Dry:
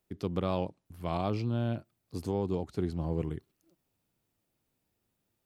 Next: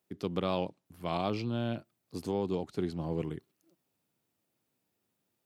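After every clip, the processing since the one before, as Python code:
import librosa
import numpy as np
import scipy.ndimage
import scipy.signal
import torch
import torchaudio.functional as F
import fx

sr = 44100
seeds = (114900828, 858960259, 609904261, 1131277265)

y = scipy.signal.sosfilt(scipy.signal.butter(2, 140.0, 'highpass', fs=sr, output='sos'), x)
y = fx.dynamic_eq(y, sr, hz=3300.0, q=0.92, threshold_db=-54.0, ratio=4.0, max_db=5)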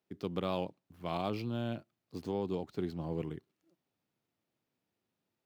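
y = scipy.signal.medfilt(x, 5)
y = y * 10.0 ** (-3.0 / 20.0)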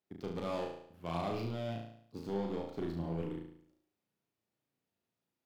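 y = fx.cheby_harmonics(x, sr, harmonics=(7,), levels_db=(-21,), full_scale_db=-20.0)
y = 10.0 ** (-33.5 / 20.0) * np.tanh(y / 10.0 ** (-33.5 / 20.0))
y = fx.room_flutter(y, sr, wall_m=6.1, rt60_s=0.65)
y = y * 10.0 ** (2.5 / 20.0)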